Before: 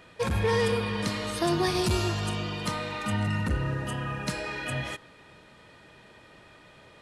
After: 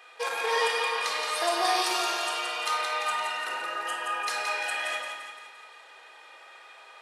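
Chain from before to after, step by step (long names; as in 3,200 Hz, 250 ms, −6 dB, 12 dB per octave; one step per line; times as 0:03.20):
high-pass filter 600 Hz 24 dB per octave
echo with a time of its own for lows and highs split 770 Hz, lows 113 ms, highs 172 ms, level −5.5 dB
rectangular room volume 2,300 cubic metres, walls furnished, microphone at 3.8 metres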